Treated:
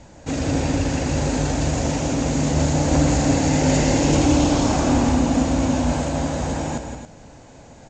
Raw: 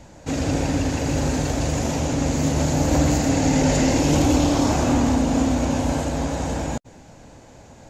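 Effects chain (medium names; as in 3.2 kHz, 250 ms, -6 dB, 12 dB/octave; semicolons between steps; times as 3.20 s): steep low-pass 8.5 kHz 72 dB/octave; loudspeakers at several distances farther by 59 m -8 dB, 94 m -10 dB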